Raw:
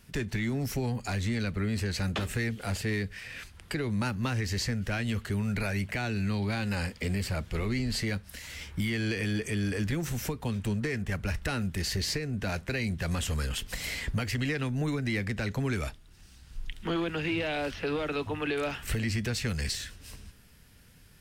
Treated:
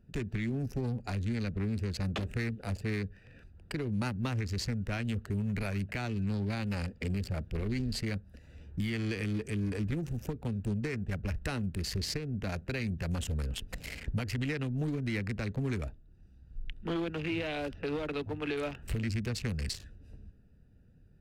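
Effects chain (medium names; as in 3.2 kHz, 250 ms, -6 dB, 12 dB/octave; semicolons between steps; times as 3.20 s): local Wiener filter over 41 samples; trim -2 dB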